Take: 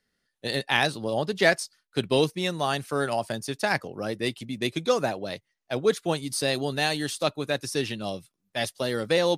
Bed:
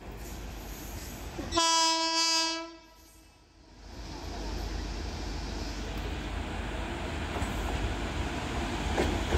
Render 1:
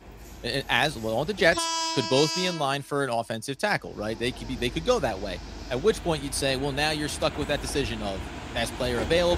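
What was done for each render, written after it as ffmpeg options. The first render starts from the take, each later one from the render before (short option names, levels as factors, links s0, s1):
-filter_complex "[1:a]volume=0.708[s0];[0:a][s0]amix=inputs=2:normalize=0"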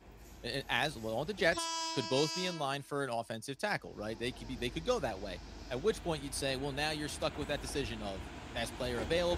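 -af "volume=0.335"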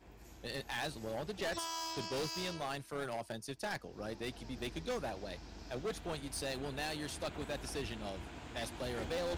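-af "volume=39.8,asoftclip=hard,volume=0.0251,tremolo=f=250:d=0.462"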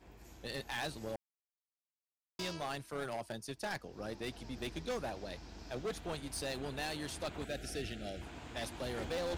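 -filter_complex "[0:a]asettb=1/sr,asplit=3[s0][s1][s2];[s0]atrim=end=7.454[s3];[s1]atrim=start=7.45:end=8.22,asetpts=PTS-STARTPTS,afade=t=in:d=0.004:c=qsin,afade=t=out:st=0.766:d=0.004:c=qsin,asuperstop=centerf=1000:order=8:qfactor=1.9[s4];[s2]atrim=start=8.216[s5];[s3][s4]acrossfade=d=0.004:c1=hsin:c2=qsin[s6];[s6][s5]acrossfade=d=0.004:c1=qsin:c2=hsin,asplit=3[s7][s8][s9];[s7]atrim=end=1.16,asetpts=PTS-STARTPTS,afade=t=out:st=1.156:d=0.004:c=hsin[s10];[s8]atrim=start=1.16:end=2.39,asetpts=PTS-STARTPTS,volume=0[s11];[s9]atrim=start=2.39,asetpts=PTS-STARTPTS,afade=t=in:d=0.004:c=hsin[s12];[s10][s11][s12]concat=n=3:v=0:a=1"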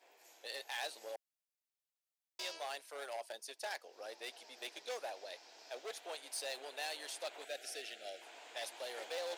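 -af "highpass=f=530:w=0.5412,highpass=f=530:w=1.3066,equalizer=f=1200:w=1.7:g=-7"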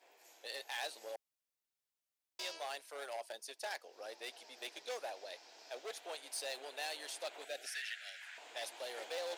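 -filter_complex "[0:a]asettb=1/sr,asplit=3[s0][s1][s2];[s0]atrim=end=7.664[s3];[s1]atrim=start=7.66:end=8.38,asetpts=PTS-STARTPTS,afade=t=in:d=0.004:c=qsin,afade=t=out:st=0.716:d=0.004:c=qsin,highpass=f=1700:t=q:w=4.2[s4];[s2]atrim=start=8.376[s5];[s3][s4]acrossfade=d=0.004:c1=hsin:c2=qsin[s6];[s6][s5]acrossfade=d=0.004:c1=qsin:c2=hsin"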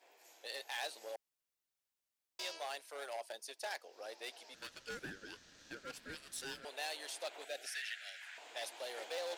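-filter_complex "[0:a]asettb=1/sr,asplit=3[s0][s1][s2];[s0]atrim=end=4.544[s3];[s1]atrim=start=4.54:end=6.65,asetpts=PTS-STARTPTS,afade=t=in:d=0.004:c=qsin,afade=t=out:st=2.106:d=0.004:c=qsin,aeval=exprs='val(0)*sin(2*PI*950*n/s)':c=same[s4];[s2]atrim=start=6.646[s5];[s3][s4]acrossfade=d=0.004:c1=hsin:c2=qsin[s6];[s6][s5]acrossfade=d=0.004:c1=qsin:c2=hsin"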